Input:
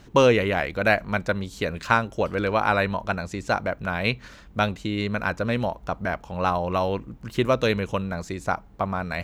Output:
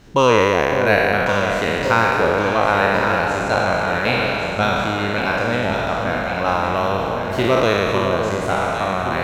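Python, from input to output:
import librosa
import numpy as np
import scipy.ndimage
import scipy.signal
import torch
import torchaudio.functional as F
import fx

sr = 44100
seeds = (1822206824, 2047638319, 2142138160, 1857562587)

y = fx.spec_trails(x, sr, decay_s=2.7)
y = fx.echo_alternate(y, sr, ms=556, hz=860.0, feedback_pct=77, wet_db=-5.5)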